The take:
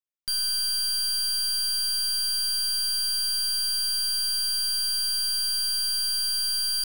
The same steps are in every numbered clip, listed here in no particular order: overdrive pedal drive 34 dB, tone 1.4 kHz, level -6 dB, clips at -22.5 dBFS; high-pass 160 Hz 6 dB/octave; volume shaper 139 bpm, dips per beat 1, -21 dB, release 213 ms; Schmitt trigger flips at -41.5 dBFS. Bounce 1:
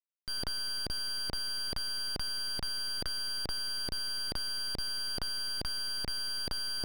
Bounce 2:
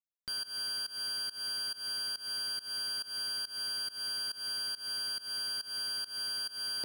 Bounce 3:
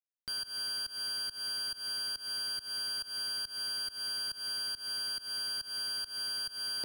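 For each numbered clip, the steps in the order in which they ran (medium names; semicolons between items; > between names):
high-pass > volume shaper > Schmitt trigger > overdrive pedal; Schmitt trigger > overdrive pedal > high-pass > volume shaper; Schmitt trigger > overdrive pedal > volume shaper > high-pass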